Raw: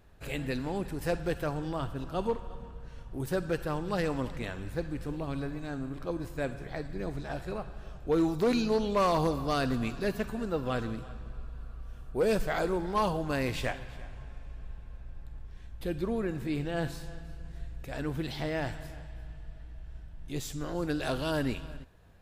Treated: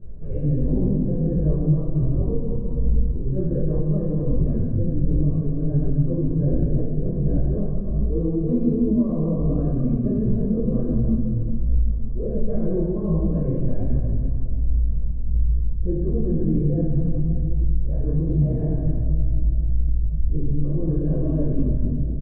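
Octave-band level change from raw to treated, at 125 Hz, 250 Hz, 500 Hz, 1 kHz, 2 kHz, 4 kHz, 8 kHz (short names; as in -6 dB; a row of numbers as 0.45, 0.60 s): +16.5 dB, +10.5 dB, +3.0 dB, -13.0 dB, under -20 dB, under -35 dB, under -30 dB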